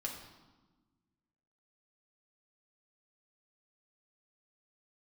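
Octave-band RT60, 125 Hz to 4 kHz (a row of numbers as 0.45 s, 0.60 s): 1.9 s, 1.9 s, 1.2 s, 1.2 s, 0.95 s, 0.95 s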